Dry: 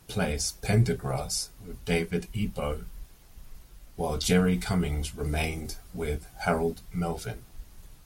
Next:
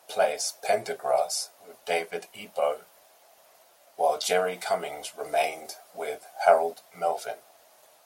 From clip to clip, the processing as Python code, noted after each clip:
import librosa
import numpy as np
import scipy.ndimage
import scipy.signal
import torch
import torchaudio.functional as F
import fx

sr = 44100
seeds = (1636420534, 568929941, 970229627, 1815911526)

y = fx.highpass_res(x, sr, hz=640.0, q=4.9)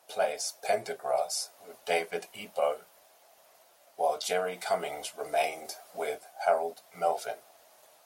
y = fx.rider(x, sr, range_db=4, speed_s=0.5)
y = y * 10.0 ** (-3.5 / 20.0)